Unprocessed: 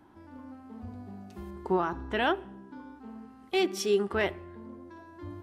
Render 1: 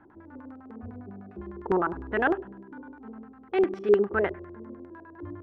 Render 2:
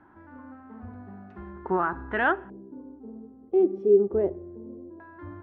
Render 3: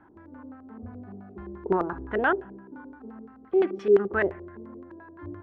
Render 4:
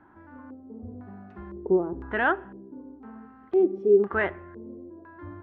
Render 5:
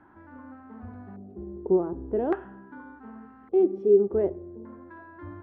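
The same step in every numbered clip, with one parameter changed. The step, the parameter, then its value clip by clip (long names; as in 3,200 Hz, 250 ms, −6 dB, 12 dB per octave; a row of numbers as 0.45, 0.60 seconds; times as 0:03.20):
auto-filter low-pass, speed: 9.9, 0.2, 5.8, 0.99, 0.43 Hertz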